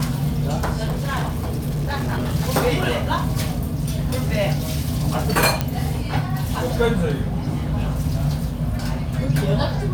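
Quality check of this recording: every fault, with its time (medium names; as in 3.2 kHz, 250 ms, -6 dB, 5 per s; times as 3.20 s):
0.83–2.35 s: clipped -19.5 dBFS
5.61 s: pop -6 dBFS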